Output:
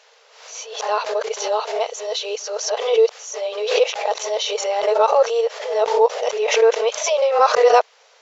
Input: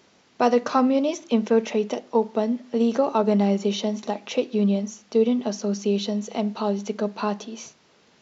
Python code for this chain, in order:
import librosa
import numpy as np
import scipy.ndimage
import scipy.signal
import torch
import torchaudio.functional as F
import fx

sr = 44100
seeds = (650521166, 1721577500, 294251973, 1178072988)

y = np.flip(x).copy()
y = fx.brickwall_highpass(y, sr, low_hz=420.0)
y = fx.pre_swell(y, sr, db_per_s=71.0)
y = y * 10.0 ** (6.5 / 20.0)